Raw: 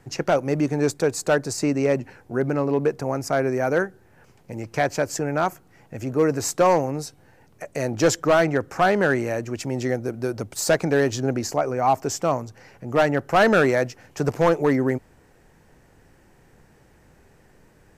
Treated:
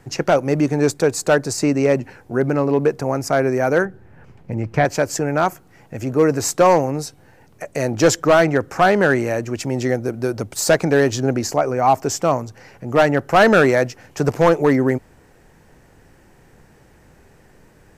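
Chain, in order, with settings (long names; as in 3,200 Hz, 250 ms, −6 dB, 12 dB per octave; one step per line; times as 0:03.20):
0:03.85–0:04.85: bass and treble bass +7 dB, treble −12 dB
level +4.5 dB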